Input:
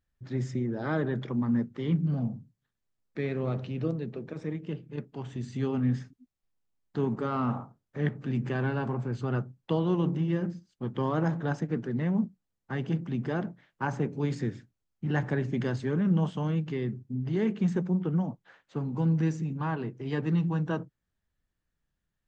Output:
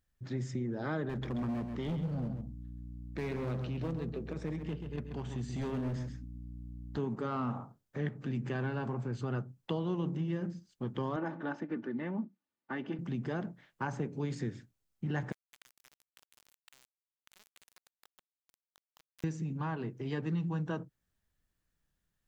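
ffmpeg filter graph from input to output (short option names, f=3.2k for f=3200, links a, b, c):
-filter_complex "[0:a]asettb=1/sr,asplit=3[a][b][c];[a]atrim=end=1.094[d];[b]atrim=start=1.09:end=6.98,asetpts=PTS-STARTPTS,afade=t=in:d=0.004:c=qsin,afade=t=out:st=5.886:d=0.004:c=qsin,aeval=exprs='val(0)+0.00501*(sin(2*PI*60*n/s)+sin(2*PI*2*60*n/s)/2+sin(2*PI*3*60*n/s)/3+sin(2*PI*4*60*n/s)/4+sin(2*PI*5*60*n/s)/5)':c=same,volume=28dB,asoftclip=hard,volume=-28dB,aecho=1:1:133:0.376,atrim=end_sample=259749[e];[c]atrim=start=6.976[f];[d][e]acrossfade=d=0.004:c1=hsin:c2=qsin[g];[g][f]acrossfade=d=0.004:c1=qsin:c2=hsin,asettb=1/sr,asplit=3[h][i][j];[h]atrim=end=11.164[k];[i]atrim=start=11.16:end=12.99,asetpts=PTS-STARTPTS,afade=t=in:d=0.004:c=qsin,afade=t=out:st=1.826:d=0.004:c=qsin,highpass=240,lowpass=2.8k,equalizer=f=560:w=4.3:g=-4.5,aecho=1:1:3.4:0.46,atrim=end_sample=80703[l];[j]atrim=start=12.986[m];[k][l]acrossfade=d=0.004:c1=hsin:c2=qsin[n];[n][m]acrossfade=d=0.004:c1=qsin:c2=hsin,asettb=1/sr,asplit=3[o][p][q];[o]atrim=end=15.324[r];[p]atrim=start=15.32:end=19.24,asetpts=PTS-STARTPTS,afade=t=in:d=0.004:c=qsin,afade=t=out:st=3.916:d=0.004:c=qsin,highpass=f=1.1k:w=0.5412,highpass=f=1.1k:w=1.3066,acompressor=threshold=-52dB:ratio=12:attack=3.2:release=140:knee=1:detection=peak,aeval=exprs='val(0)*gte(abs(val(0)),0.00422)':c=same[s];[q]atrim=start=19.236[t];[r][s]acrossfade=d=0.004:c1=hsin:c2=qsin[u];[u][t]acrossfade=d=0.004:c1=qsin:c2=hsin,highshelf=f=5.8k:g=5.5,acompressor=threshold=-36dB:ratio=2"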